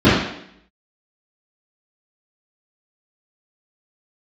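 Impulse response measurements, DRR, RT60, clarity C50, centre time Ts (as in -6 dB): -13.5 dB, 0.70 s, 0.5 dB, 68 ms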